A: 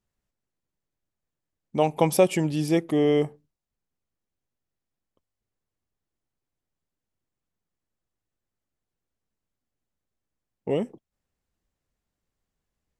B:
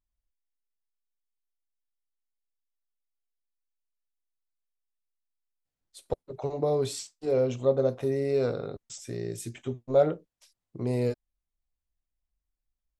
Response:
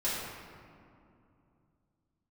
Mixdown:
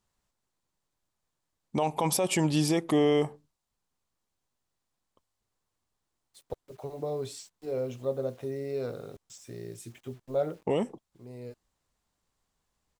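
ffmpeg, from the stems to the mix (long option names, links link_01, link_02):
-filter_complex "[0:a]equalizer=frequency=1000:width_type=o:width=1:gain=8,equalizer=frequency=4000:width_type=o:width=1:gain=5,equalizer=frequency=8000:width_type=o:width=1:gain=6,alimiter=limit=-11.5dB:level=0:latency=1:release=14,volume=1dB,asplit=2[link_01][link_02];[1:a]acrusher=bits=8:mix=0:aa=0.000001,adelay=400,volume=-7dB[link_03];[link_02]apad=whole_len=590677[link_04];[link_03][link_04]sidechaincompress=threshold=-38dB:ratio=4:attack=35:release=1020[link_05];[link_01][link_05]amix=inputs=2:normalize=0,alimiter=limit=-16.5dB:level=0:latency=1:release=129"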